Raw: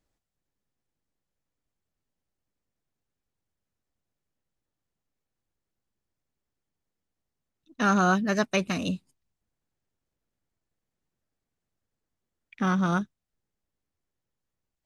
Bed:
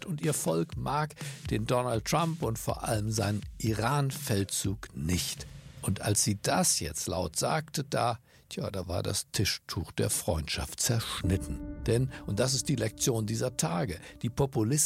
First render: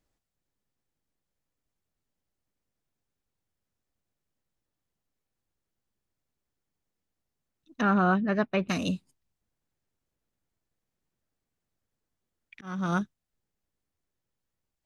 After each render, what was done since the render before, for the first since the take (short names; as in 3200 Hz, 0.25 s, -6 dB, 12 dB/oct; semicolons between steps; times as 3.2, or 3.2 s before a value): 7.81–8.69 air absorption 390 m; 12.61–13.01 fade in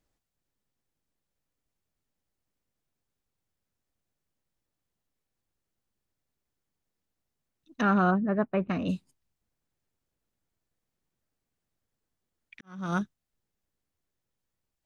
8.1–8.88 LPF 1000 Hz -> 2000 Hz; 12.61–13.01 fade in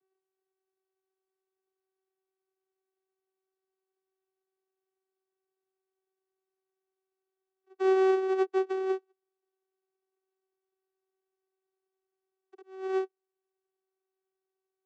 sample sorter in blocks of 256 samples; vocoder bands 16, saw 380 Hz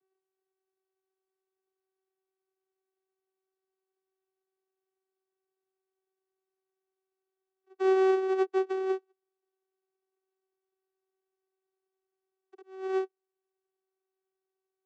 nothing audible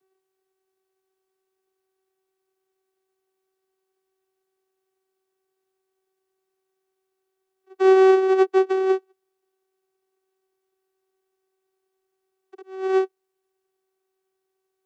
gain +9.5 dB